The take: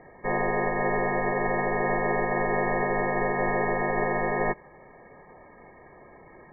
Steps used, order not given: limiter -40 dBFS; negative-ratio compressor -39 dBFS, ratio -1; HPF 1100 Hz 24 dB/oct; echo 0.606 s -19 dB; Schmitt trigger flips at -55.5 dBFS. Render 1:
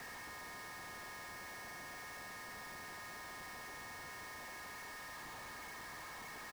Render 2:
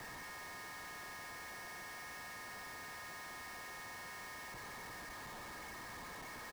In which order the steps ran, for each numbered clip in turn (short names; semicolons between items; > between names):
echo > negative-ratio compressor > HPF > limiter > Schmitt trigger; HPF > negative-ratio compressor > echo > limiter > Schmitt trigger